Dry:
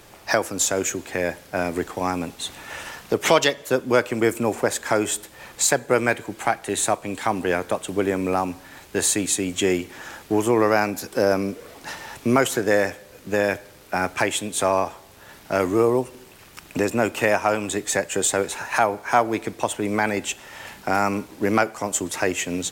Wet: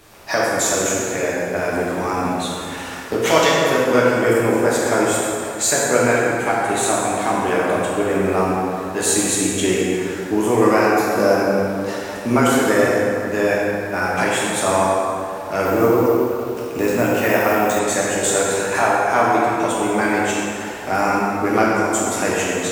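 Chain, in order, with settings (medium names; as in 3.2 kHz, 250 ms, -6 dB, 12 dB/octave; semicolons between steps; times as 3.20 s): plate-style reverb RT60 2.9 s, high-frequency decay 0.55×, DRR -6.5 dB; 15.65–17.79 s: careless resampling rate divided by 3×, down none, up hold; trim -2.5 dB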